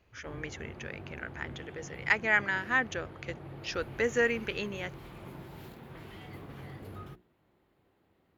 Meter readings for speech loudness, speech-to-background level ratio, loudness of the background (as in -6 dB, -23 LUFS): -32.0 LUFS, 15.0 dB, -47.0 LUFS